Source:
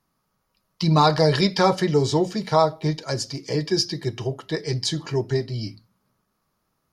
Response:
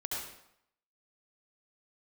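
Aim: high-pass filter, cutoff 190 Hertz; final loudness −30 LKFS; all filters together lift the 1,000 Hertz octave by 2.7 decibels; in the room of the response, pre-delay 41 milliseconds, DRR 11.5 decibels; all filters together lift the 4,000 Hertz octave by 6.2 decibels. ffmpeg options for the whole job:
-filter_complex "[0:a]highpass=190,equalizer=frequency=1000:width_type=o:gain=3,equalizer=frequency=4000:width_type=o:gain=7.5,asplit=2[link_01][link_02];[1:a]atrim=start_sample=2205,adelay=41[link_03];[link_02][link_03]afir=irnorm=-1:irlink=0,volume=-14.5dB[link_04];[link_01][link_04]amix=inputs=2:normalize=0,volume=-9.5dB"

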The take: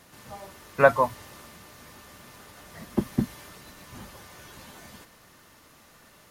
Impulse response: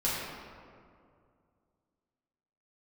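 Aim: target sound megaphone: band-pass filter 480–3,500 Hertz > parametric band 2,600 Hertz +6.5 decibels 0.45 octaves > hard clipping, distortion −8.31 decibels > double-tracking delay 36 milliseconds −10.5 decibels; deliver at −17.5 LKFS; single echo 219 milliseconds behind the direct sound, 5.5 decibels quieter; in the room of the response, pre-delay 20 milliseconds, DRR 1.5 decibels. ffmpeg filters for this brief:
-filter_complex "[0:a]aecho=1:1:219:0.531,asplit=2[link_01][link_02];[1:a]atrim=start_sample=2205,adelay=20[link_03];[link_02][link_03]afir=irnorm=-1:irlink=0,volume=-10.5dB[link_04];[link_01][link_04]amix=inputs=2:normalize=0,highpass=480,lowpass=3500,equalizer=frequency=2600:width_type=o:width=0.45:gain=6.5,asoftclip=type=hard:threshold=-17dB,asplit=2[link_05][link_06];[link_06]adelay=36,volume=-10.5dB[link_07];[link_05][link_07]amix=inputs=2:normalize=0,volume=9.5dB"

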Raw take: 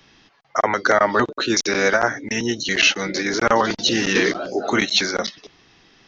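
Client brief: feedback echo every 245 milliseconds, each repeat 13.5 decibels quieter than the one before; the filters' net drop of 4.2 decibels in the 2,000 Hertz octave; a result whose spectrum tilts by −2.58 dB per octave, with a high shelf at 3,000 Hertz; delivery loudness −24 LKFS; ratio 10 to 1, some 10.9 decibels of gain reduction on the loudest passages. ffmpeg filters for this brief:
ffmpeg -i in.wav -af "equalizer=frequency=2000:width_type=o:gain=-7,highshelf=frequency=3000:gain=3.5,acompressor=threshold=-24dB:ratio=10,aecho=1:1:245|490:0.211|0.0444,volume=4dB" out.wav

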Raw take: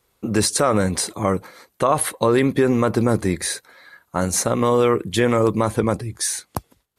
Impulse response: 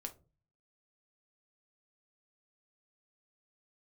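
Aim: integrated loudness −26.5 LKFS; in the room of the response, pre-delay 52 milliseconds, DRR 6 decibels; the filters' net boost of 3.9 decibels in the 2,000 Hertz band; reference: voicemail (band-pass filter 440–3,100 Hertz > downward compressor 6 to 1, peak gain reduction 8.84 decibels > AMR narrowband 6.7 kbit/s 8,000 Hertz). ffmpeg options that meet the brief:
-filter_complex "[0:a]equalizer=frequency=2000:width_type=o:gain=5.5,asplit=2[link_01][link_02];[1:a]atrim=start_sample=2205,adelay=52[link_03];[link_02][link_03]afir=irnorm=-1:irlink=0,volume=-3dB[link_04];[link_01][link_04]amix=inputs=2:normalize=0,highpass=440,lowpass=3100,acompressor=threshold=-21dB:ratio=6,volume=2dB" -ar 8000 -c:a libopencore_amrnb -b:a 6700

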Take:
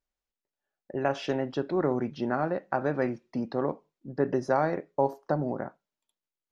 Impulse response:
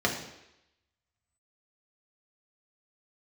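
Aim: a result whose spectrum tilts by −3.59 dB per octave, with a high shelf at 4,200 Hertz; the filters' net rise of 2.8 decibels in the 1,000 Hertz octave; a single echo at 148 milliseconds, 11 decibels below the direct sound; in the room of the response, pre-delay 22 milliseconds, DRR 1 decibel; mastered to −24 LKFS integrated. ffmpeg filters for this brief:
-filter_complex "[0:a]equalizer=frequency=1000:width_type=o:gain=3.5,highshelf=frequency=4200:gain=5,aecho=1:1:148:0.282,asplit=2[link_01][link_02];[1:a]atrim=start_sample=2205,adelay=22[link_03];[link_02][link_03]afir=irnorm=-1:irlink=0,volume=-12.5dB[link_04];[link_01][link_04]amix=inputs=2:normalize=0,volume=0.5dB"

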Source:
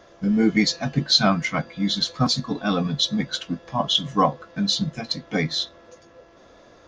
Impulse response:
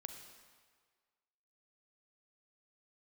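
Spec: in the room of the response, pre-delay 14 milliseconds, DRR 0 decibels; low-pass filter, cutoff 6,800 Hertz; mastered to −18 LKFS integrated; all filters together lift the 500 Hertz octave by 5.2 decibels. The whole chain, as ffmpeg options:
-filter_complex "[0:a]lowpass=6800,equalizer=frequency=500:width_type=o:gain=6.5,asplit=2[link_01][link_02];[1:a]atrim=start_sample=2205,adelay=14[link_03];[link_02][link_03]afir=irnorm=-1:irlink=0,volume=4dB[link_04];[link_01][link_04]amix=inputs=2:normalize=0,volume=0.5dB"

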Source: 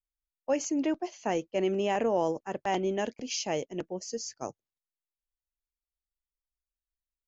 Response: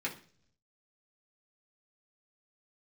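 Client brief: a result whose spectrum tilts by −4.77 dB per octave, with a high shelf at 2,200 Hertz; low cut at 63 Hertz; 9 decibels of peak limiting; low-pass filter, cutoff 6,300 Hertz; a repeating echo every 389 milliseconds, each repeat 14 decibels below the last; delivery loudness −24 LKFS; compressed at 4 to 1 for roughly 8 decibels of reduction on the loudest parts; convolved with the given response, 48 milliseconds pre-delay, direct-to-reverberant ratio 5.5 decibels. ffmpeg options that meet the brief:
-filter_complex "[0:a]highpass=63,lowpass=6300,highshelf=frequency=2200:gain=-6.5,acompressor=threshold=-33dB:ratio=4,alimiter=level_in=7.5dB:limit=-24dB:level=0:latency=1,volume=-7.5dB,aecho=1:1:389|778:0.2|0.0399,asplit=2[link_01][link_02];[1:a]atrim=start_sample=2205,adelay=48[link_03];[link_02][link_03]afir=irnorm=-1:irlink=0,volume=-9.5dB[link_04];[link_01][link_04]amix=inputs=2:normalize=0,volume=16.5dB"

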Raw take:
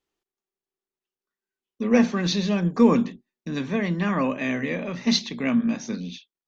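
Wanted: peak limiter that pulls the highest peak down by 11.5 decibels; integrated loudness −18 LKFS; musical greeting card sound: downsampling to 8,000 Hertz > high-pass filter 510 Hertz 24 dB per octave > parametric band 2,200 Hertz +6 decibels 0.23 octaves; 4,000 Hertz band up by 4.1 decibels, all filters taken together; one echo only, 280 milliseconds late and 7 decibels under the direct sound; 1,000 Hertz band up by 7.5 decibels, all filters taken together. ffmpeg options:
ffmpeg -i in.wav -af "equalizer=frequency=1000:width_type=o:gain=8.5,equalizer=frequency=4000:width_type=o:gain=4,alimiter=limit=-16.5dB:level=0:latency=1,aecho=1:1:280:0.447,aresample=8000,aresample=44100,highpass=frequency=510:width=0.5412,highpass=frequency=510:width=1.3066,equalizer=frequency=2200:width_type=o:width=0.23:gain=6,volume=12.5dB" out.wav

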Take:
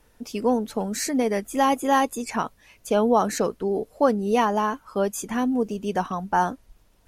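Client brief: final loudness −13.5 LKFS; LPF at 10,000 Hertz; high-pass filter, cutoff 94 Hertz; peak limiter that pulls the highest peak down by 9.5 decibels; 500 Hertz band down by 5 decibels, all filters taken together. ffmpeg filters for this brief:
ffmpeg -i in.wav -af "highpass=94,lowpass=10000,equalizer=frequency=500:width_type=o:gain=-6,volume=16dB,alimiter=limit=-2dB:level=0:latency=1" out.wav

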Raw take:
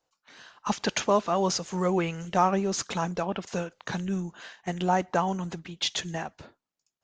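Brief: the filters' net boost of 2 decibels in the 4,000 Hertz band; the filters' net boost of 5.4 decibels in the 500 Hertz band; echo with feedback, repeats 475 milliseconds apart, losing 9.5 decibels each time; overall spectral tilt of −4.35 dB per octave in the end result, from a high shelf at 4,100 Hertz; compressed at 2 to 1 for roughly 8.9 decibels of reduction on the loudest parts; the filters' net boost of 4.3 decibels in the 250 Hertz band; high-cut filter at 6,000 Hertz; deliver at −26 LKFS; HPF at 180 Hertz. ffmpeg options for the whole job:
ffmpeg -i in.wav -af "highpass=180,lowpass=6000,equalizer=frequency=250:width_type=o:gain=9,equalizer=frequency=500:width_type=o:gain=4.5,equalizer=frequency=4000:width_type=o:gain=7,highshelf=frequency=4100:gain=-6.5,acompressor=threshold=-31dB:ratio=2,aecho=1:1:475|950|1425|1900:0.335|0.111|0.0365|0.012,volume=5.5dB" out.wav

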